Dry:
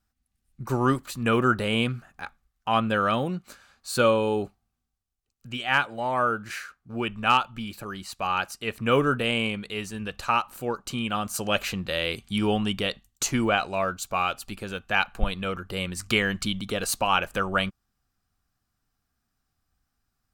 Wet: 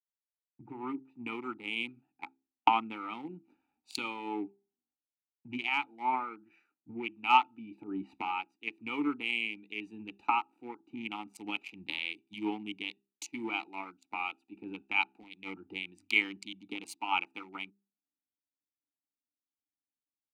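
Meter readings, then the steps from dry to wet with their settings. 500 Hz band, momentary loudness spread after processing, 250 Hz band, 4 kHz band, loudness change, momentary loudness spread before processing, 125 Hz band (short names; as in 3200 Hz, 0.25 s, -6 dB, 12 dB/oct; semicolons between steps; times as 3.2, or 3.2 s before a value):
-19.5 dB, 17 LU, -10.5 dB, -10.0 dB, -8.5 dB, 13 LU, -25.0 dB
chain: Wiener smoothing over 41 samples; recorder AGC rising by 45 dB/s; notch 1100 Hz, Q 19; de-hum 66.31 Hz, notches 6; dynamic EQ 1300 Hz, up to +7 dB, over -43 dBFS, Q 6.8; harmonic-percussive split harmonic +3 dB; vowel filter u; tilt +4.5 dB/oct; three-band expander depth 100%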